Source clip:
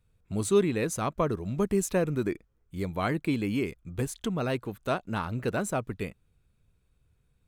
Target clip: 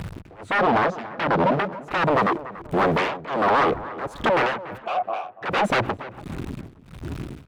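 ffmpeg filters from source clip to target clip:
ffmpeg -i in.wav -filter_complex "[0:a]aeval=exprs='val(0)+0.5*0.0119*sgn(val(0))':channel_layout=same,asettb=1/sr,asplit=3[link_01][link_02][link_03];[link_01]atrim=end=0.594[link_04];[link_02]atrim=start=0.59:end=1.73,asetpts=PTS-STARTPTS,afade=type=in:duration=0.004:curve=qsin,afade=type=out:start_time=1.136:duration=0.004:curve=qsin,highpass=frequency=160:width=0.5412,highpass=frequency=160:width=1.3066,equalizer=frequency=190:width_type=q:width=4:gain=9,equalizer=frequency=550:width_type=q:width=4:gain=-8,equalizer=frequency=2000:width_type=q:width=4:gain=-10,lowpass=frequency=4800:width=0.5412,lowpass=frequency=4800:width=1.3066[link_05];[link_03]atrim=start=1.726[link_06];[link_04][link_05]acrossfade=duration=0.004:curve1=hsin:curve2=qsin[link_07];[link_07][link_06]acrossfade=duration=0.004:curve1=qsin:curve2=hsin,afwtdn=0.0141,asettb=1/sr,asplit=3[link_08][link_09][link_10];[link_08]atrim=end=3.484[link_11];[link_09]atrim=start=3.48:end=4.11,asetpts=PTS-STARTPTS,afade=type=in:duration=0.004:curve=qsin,afade=type=out:start_time=0.626:duration=0.004:curve=qsin,tiltshelf=frequency=1200:gain=7.5[link_12];[link_10]atrim=start=4.106[link_13];[link_11][link_12]acrossfade=duration=0.004:curve1=hsin:curve2=qsin[link_14];[link_14][link_13]acrossfade=duration=0.004:curve1=qsin:curve2=hsin,acompressor=threshold=-28dB:ratio=6,aeval=exprs='0.0158*(abs(mod(val(0)/0.0158+3,4)-2)-1)':channel_layout=same,asplit=3[link_15][link_16][link_17];[link_15]afade=type=out:start_time=4.77:duration=0.02[link_18];[link_16]asplit=3[link_19][link_20][link_21];[link_19]bandpass=frequency=730:width_type=q:width=8,volume=0dB[link_22];[link_20]bandpass=frequency=1090:width_type=q:width=8,volume=-6dB[link_23];[link_21]bandpass=frequency=2440:width_type=q:width=8,volume=-9dB[link_24];[link_22][link_23][link_24]amix=inputs=3:normalize=0,afade=type=in:start_time=4.77:duration=0.02,afade=type=out:start_time=5.41:duration=0.02[link_25];[link_17]afade=type=in:start_time=5.41:duration=0.02[link_26];[link_18][link_25][link_26]amix=inputs=3:normalize=0,acrossover=split=3700[link_27][link_28];[link_28]acompressor=threshold=-60dB:ratio=4:attack=1:release=60[link_29];[link_27][link_29]amix=inputs=2:normalize=0,tremolo=f=1.4:d=0.98,asplit=2[link_30][link_31];[link_31]adelay=287,lowpass=frequency=2000:poles=1,volume=-18.5dB,asplit=2[link_32][link_33];[link_33]adelay=287,lowpass=frequency=2000:poles=1,volume=0.4,asplit=2[link_34][link_35];[link_35]adelay=287,lowpass=frequency=2000:poles=1,volume=0.4[link_36];[link_30][link_32][link_34][link_36]amix=inputs=4:normalize=0,asplit=2[link_37][link_38];[link_38]highpass=frequency=720:poles=1,volume=38dB,asoftclip=type=tanh:threshold=-7dB[link_39];[link_37][link_39]amix=inputs=2:normalize=0,lowpass=frequency=1600:poles=1,volume=-6dB" out.wav

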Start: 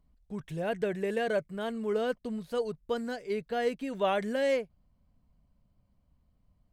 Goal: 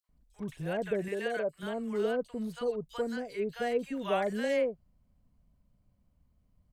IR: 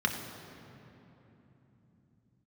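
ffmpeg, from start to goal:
-filter_complex "[0:a]asettb=1/sr,asplit=3[link_01][link_02][link_03];[link_01]atrim=end=0.994[link_04];[link_02]atrim=start=0.99:end=1.54,asetpts=PTS-STARTPTS,afade=type=in:duration=0.004:curve=qsin,afade=type=out:start_time=0.546:duration=0.004:curve=qsin,lowshelf=frequency=220:gain=-11.5[link_05];[link_03]atrim=start=1.536[link_06];[link_04][link_05]acrossfade=duration=0.004:curve1=hsin:curve2=qsin[link_07];[link_07][link_06]acrossfade=duration=0.004:curve1=qsin:curve2=hsin,acrossover=split=920|3700[link_08][link_09][link_10];[link_09]adelay=40[link_11];[link_08]adelay=90[link_12];[link_12][link_11][link_10]amix=inputs=3:normalize=0"

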